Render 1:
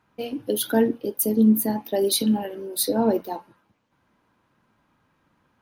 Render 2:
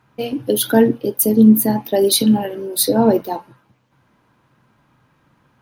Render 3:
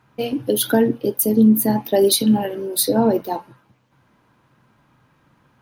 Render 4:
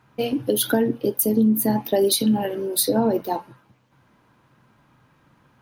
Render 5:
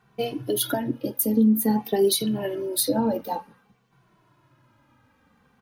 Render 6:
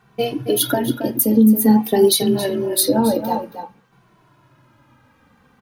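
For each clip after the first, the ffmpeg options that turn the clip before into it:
-af "equalizer=f=130:t=o:w=0.24:g=11,volume=7dB"
-af "alimiter=limit=-6dB:level=0:latency=1:release=278"
-af "acompressor=threshold=-17dB:ratio=2.5"
-filter_complex "[0:a]asplit=2[a][b];[b]adelay=2.2,afreqshift=-0.53[c];[a][c]amix=inputs=2:normalize=1"
-filter_complex "[0:a]asplit=2[a][b];[b]adelay=274.1,volume=-9dB,highshelf=f=4k:g=-6.17[c];[a][c]amix=inputs=2:normalize=0,volume=6.5dB"

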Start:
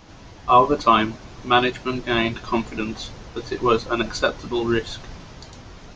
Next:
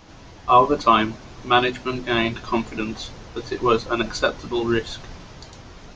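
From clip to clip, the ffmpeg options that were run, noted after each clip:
-af "bandreject=f=50:t=h:w=6,bandreject=f=100:t=h:w=6,bandreject=f=150:t=h:w=6,bandreject=f=200:t=h:w=6,bandreject=f=250:t=h:w=6"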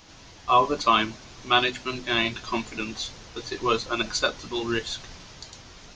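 -af "highshelf=f=2.1k:g=11.5,volume=-7dB"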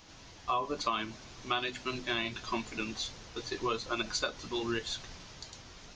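-af "acompressor=threshold=-24dB:ratio=6,volume=-4.5dB"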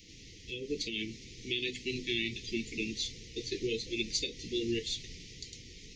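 -af "asuperstop=centerf=970:order=20:qfactor=0.68,volume=1.5dB"

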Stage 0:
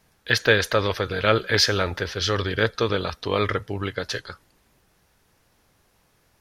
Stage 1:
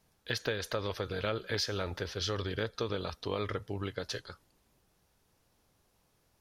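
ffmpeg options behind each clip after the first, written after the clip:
-af "equalizer=f=1.8k:w=1.3:g=-5,acompressor=threshold=-22dB:ratio=6,volume=-7.5dB"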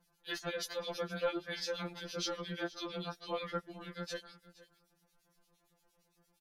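-filter_complex "[0:a]acrossover=split=2100[a][b];[a]aeval=exprs='val(0)*(1-1/2+1/2*cos(2*PI*8.7*n/s))':c=same[c];[b]aeval=exprs='val(0)*(1-1/2-1/2*cos(2*PI*8.7*n/s))':c=same[d];[c][d]amix=inputs=2:normalize=0,aecho=1:1:471:0.112,afftfilt=real='re*2.83*eq(mod(b,8),0)':imag='im*2.83*eq(mod(b,8),0)':win_size=2048:overlap=0.75,volume=4.5dB"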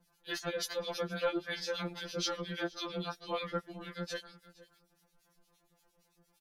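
-filter_complex "[0:a]acrossover=split=650[a][b];[a]aeval=exprs='val(0)*(1-0.5/2+0.5/2*cos(2*PI*3.7*n/s))':c=same[c];[b]aeval=exprs='val(0)*(1-0.5/2-0.5/2*cos(2*PI*3.7*n/s))':c=same[d];[c][d]amix=inputs=2:normalize=0,volume=4.5dB"

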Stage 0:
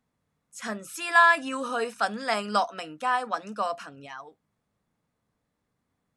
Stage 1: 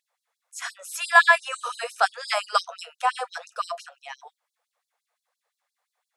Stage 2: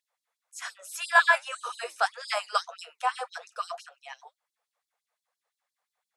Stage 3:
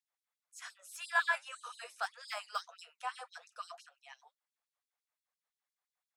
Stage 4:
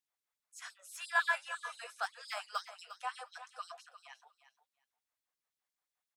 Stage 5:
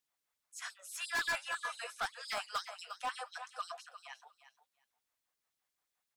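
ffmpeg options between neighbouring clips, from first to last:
-af "equalizer=f=750:t=o:w=0.31:g=3,afftfilt=real='re*gte(b*sr/1024,430*pow(3900/430,0.5+0.5*sin(2*PI*5.8*pts/sr)))':imag='im*gte(b*sr/1024,430*pow(3900/430,0.5+0.5*sin(2*PI*5.8*pts/sr)))':win_size=1024:overlap=0.75,volume=5dB"
-af "flanger=delay=0.5:depth=8:regen=-73:speed=1.8:shape=triangular"
-filter_complex "[0:a]highpass=f=990:p=1,acrossover=split=1500|2700[a][b][c];[c]asoftclip=type=tanh:threshold=-31dB[d];[a][b][d]amix=inputs=3:normalize=0,volume=-9dB"
-af "aecho=1:1:353|706:0.224|0.0336"
-af "asoftclip=type=hard:threshold=-35dB,volume=4dB"

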